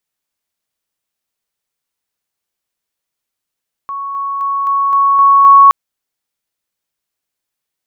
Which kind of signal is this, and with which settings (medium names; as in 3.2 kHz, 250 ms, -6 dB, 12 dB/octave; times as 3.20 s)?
level ladder 1.11 kHz -19.5 dBFS, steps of 3 dB, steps 7, 0.26 s 0.00 s